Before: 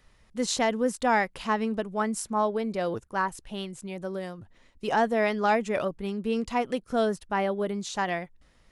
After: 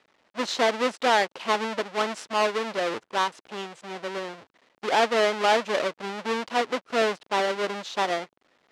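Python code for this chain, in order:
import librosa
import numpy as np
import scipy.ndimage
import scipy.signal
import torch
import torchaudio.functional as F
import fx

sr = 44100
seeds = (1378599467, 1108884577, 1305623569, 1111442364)

y = fx.halfwave_hold(x, sr)
y = fx.bandpass_edges(y, sr, low_hz=390.0, high_hz=4500.0)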